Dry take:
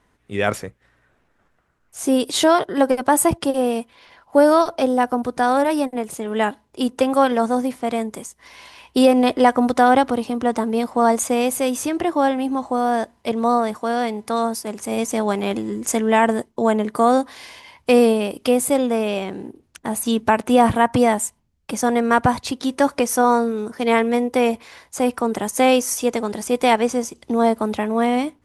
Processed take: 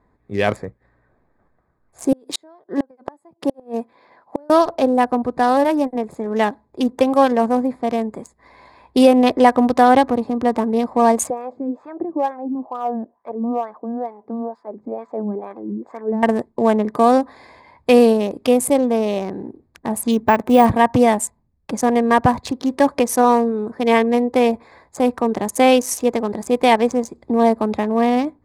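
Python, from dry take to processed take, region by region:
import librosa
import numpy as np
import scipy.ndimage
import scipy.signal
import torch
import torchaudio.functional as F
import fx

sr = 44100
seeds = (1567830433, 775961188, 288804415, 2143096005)

y = fx.chain(x, sr, fx.highpass(hz=190.0, slope=12),
    fx.gate_flip(shuts_db=-10.0, range_db=-33), at=(2.12, 4.5))
y = fx.chain(y, sr, fx.wah_lfo(hz=2.2, low_hz=210.0, high_hz=1300.0, q=2.3),
    fx.resample_linear(factor=3), at=(11.3, 16.23))
y = fx.chain(y, sr, fx.peak_eq(hz=4600.0, db=-6.0, octaves=0.31),
    fx.resample_bad(factor=2, down='none', up='hold'), at=(20.11, 20.66))
y = fx.wiener(y, sr, points=15)
y = fx.notch(y, sr, hz=1400.0, q=6.3)
y = F.gain(torch.from_numpy(y), 2.5).numpy()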